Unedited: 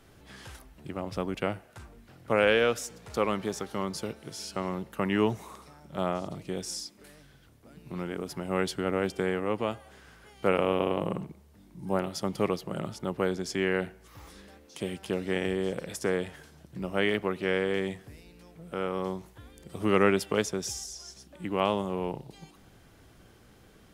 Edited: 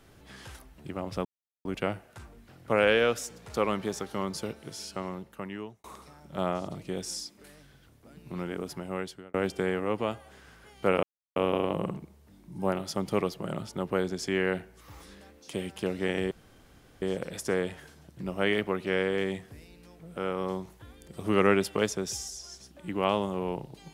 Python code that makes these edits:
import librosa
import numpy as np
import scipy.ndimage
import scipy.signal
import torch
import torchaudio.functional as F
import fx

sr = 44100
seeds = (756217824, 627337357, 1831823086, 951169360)

y = fx.edit(x, sr, fx.insert_silence(at_s=1.25, length_s=0.4),
    fx.fade_out_span(start_s=4.28, length_s=1.16),
    fx.fade_out_span(start_s=8.24, length_s=0.7),
    fx.insert_silence(at_s=10.63, length_s=0.33),
    fx.insert_room_tone(at_s=15.58, length_s=0.71), tone=tone)